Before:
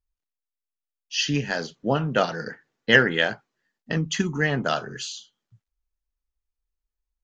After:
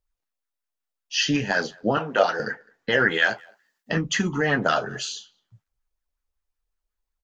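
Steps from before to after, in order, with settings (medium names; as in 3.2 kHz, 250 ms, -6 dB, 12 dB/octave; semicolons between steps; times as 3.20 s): 1.97–2.40 s: high-pass 330 Hz 12 dB/octave; 3.09–3.92 s: tilt EQ +2.5 dB/octave; peak limiter -14.5 dBFS, peak gain reduction 11 dB; flange 1.2 Hz, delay 8.8 ms, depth 2.4 ms, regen -47%; speakerphone echo 210 ms, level -27 dB; sweeping bell 5.4 Hz 530–1700 Hz +9 dB; trim +6 dB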